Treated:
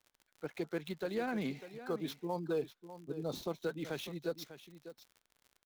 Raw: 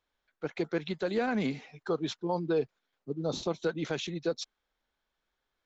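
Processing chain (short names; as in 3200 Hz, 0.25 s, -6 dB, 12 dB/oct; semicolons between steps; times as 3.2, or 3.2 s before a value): switching dead time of 0.051 ms; echo 0.598 s -13 dB; crackle 61/s -42 dBFS; gain -6.5 dB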